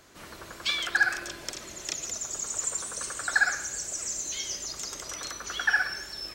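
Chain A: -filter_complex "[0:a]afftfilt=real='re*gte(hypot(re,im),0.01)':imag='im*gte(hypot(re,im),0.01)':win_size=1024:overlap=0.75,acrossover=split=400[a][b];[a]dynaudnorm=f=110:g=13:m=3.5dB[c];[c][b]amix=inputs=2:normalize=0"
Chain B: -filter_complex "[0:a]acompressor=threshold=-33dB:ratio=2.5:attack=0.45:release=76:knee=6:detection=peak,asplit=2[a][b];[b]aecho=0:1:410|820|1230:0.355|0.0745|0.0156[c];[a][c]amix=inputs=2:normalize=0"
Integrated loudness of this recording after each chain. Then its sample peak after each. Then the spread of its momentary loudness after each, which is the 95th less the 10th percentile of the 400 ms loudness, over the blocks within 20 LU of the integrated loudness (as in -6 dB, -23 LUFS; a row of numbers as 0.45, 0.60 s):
-29.5, -35.0 LUFS; -11.5, -22.0 dBFS; 12, 5 LU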